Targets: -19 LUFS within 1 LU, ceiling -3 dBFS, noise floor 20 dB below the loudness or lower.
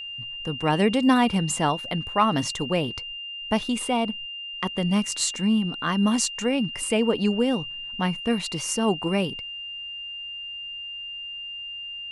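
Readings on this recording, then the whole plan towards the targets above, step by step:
steady tone 2800 Hz; tone level -33 dBFS; loudness -25.5 LUFS; peak -7.0 dBFS; loudness target -19.0 LUFS
-> notch 2800 Hz, Q 30; gain +6.5 dB; limiter -3 dBFS

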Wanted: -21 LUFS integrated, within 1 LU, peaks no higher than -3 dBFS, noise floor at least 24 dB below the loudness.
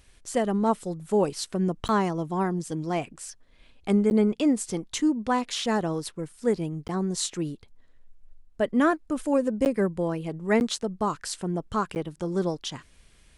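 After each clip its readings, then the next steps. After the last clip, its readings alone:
dropouts 6; longest dropout 9.8 ms; loudness -27.0 LUFS; peak -10.5 dBFS; loudness target -21.0 LUFS
-> interpolate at 1.88/4.1/6.88/9.65/10.6/11.95, 9.8 ms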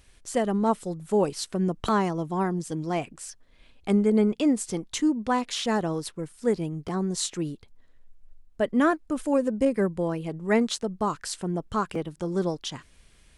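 dropouts 0; loudness -27.0 LUFS; peak -10.5 dBFS; loudness target -21.0 LUFS
-> gain +6 dB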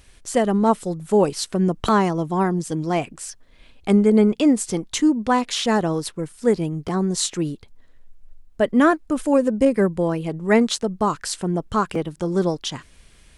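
loudness -21.0 LUFS; peak -4.5 dBFS; noise floor -52 dBFS

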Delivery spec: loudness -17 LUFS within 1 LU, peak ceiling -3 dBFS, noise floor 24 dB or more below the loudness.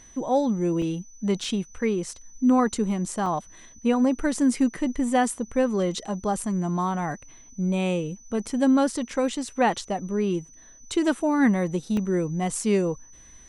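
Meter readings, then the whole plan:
dropouts 4; longest dropout 2.1 ms; steady tone 6000 Hz; tone level -49 dBFS; loudness -25.0 LUFS; peak -9.5 dBFS; loudness target -17.0 LUFS
-> interpolate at 0.82/1.44/3.26/11.97, 2.1 ms; notch 6000 Hz, Q 30; gain +8 dB; limiter -3 dBFS

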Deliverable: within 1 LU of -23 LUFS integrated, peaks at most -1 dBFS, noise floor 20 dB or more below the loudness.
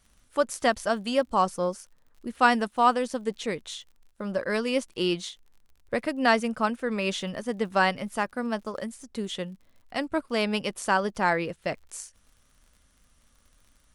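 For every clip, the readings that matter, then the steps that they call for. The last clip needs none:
ticks 55/s; loudness -27.5 LUFS; peak -7.0 dBFS; loudness target -23.0 LUFS
-> de-click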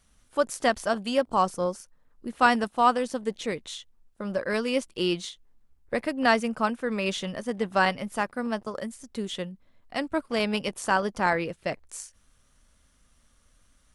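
ticks 0.072/s; loudness -27.5 LUFS; peak -7.0 dBFS; loudness target -23.0 LUFS
-> gain +4.5 dB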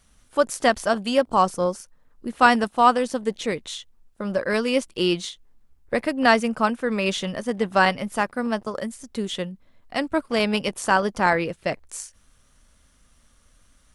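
loudness -23.0 LUFS; peak -2.5 dBFS; noise floor -59 dBFS

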